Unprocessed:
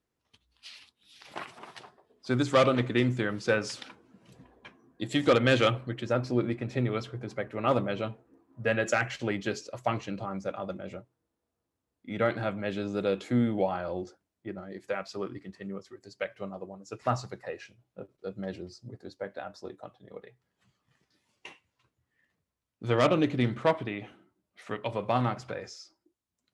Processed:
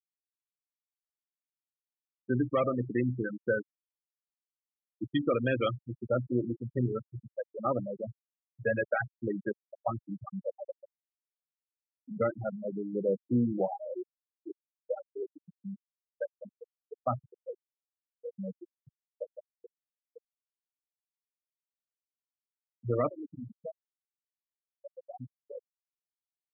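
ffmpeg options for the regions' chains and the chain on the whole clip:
-filter_complex "[0:a]asettb=1/sr,asplit=3[a][b][c];[a]atrim=end=23.084[d];[b]atrim=start=23.08:end=25.41,asetpts=PTS-STARTPTS,afade=t=in:d=0.004:c=qsin,afade=t=out:st=2.326:d=0.004:c=qsin,acompressor=threshold=-35dB:ratio=3:attack=3.2:release=140:knee=1:detection=peak,highpass=f=59:p=1[e];[c]atrim=start=25.406[f];[d][e]acrossfade=d=0.004:c1=hsin:c2=qsin[g];[g][f]acrossfade=d=0.004:c1=qsin:c2=hsin,afftfilt=real='re*gte(hypot(re,im),0.126)':imag='im*gte(hypot(re,im),0.126)':win_size=1024:overlap=0.75,highpass=80,alimiter=limit=-18dB:level=0:latency=1:release=472"

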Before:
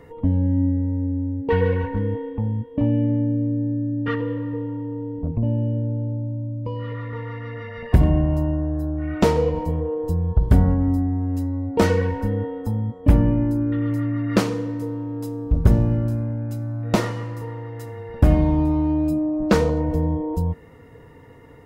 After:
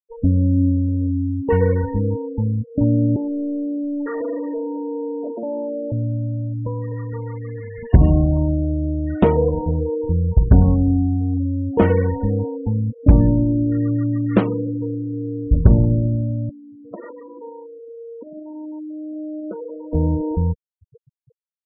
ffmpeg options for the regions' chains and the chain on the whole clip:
-filter_complex "[0:a]asettb=1/sr,asplit=3[a][b][c];[a]atrim=end=3.164[d];[b]atrim=start=3.16:end=5.92,asetpts=PTS-STARTPTS,afade=t=in:d=0.004:c=qsin,afade=t=out:st=2.756:d=0.004:c=qsin,highpass=f=320:w=0.5412,highpass=f=320:w=1.3066,asoftclip=type=hard:threshold=-26.5dB,asplit=2[e][f];[f]highpass=f=720:p=1,volume=21dB,asoftclip=type=tanh:threshold=-19dB[g];[e][g]amix=inputs=2:normalize=0,lowpass=f=1k:p=1,volume=-6dB[h];[c]atrim=start=5.916[i];[d][h]acrossfade=d=0.004:c1=hsin:c2=qsin[j];[j][i]acrossfade=d=0.004:c1=qsin:c2=hsin,asettb=1/sr,asplit=3[k][l][m];[k]atrim=end=16.494[n];[l]atrim=start=16.49:end=19.93,asetpts=PTS-STARTPTS,afade=t=in:d=0.004:c=qsin,afade=t=out:st=3.436:d=0.004:c=qsin,acompressor=threshold=-26dB:ratio=12:attack=3.2:release=140:knee=1:detection=peak,highpass=310,lowpass=2.9k[o];[m]atrim=start=19.926[p];[n][o]acrossfade=d=0.004:c1=hsin:c2=qsin[q];[q][p]acrossfade=d=0.004:c1=qsin:c2=hsin,highshelf=f=4.4k:t=q:w=1.5:g=-10.5,afftfilt=real='re*gte(hypot(re,im),0.0562)':imag='im*gte(hypot(re,im),0.0562)':win_size=1024:overlap=0.75,tiltshelf=f=1.4k:g=5,volume=-1.5dB"

